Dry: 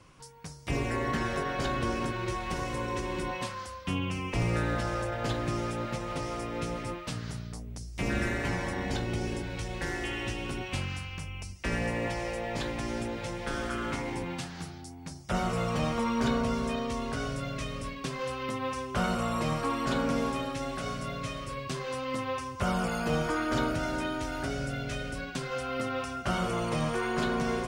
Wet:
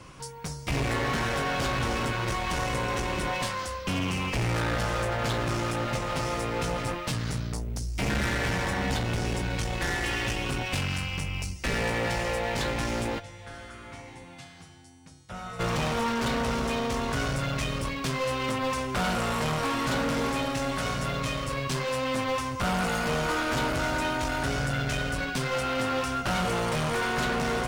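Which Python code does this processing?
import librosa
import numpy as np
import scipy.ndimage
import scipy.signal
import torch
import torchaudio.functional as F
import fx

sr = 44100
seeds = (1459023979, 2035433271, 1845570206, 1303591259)

y = fx.dynamic_eq(x, sr, hz=350.0, q=1.9, threshold_db=-46.0, ratio=4.0, max_db=-6)
y = fx.comb_fb(y, sr, f0_hz=99.0, decay_s=1.7, harmonics='odd', damping=0.0, mix_pct=90, at=(13.18, 15.59), fade=0.02)
y = fx.clip_asym(y, sr, top_db=-41.0, bottom_db=-30.5)
y = fx.doubler(y, sr, ms=15.0, db=-11.5)
y = F.gain(torch.from_numpy(y), 9.0).numpy()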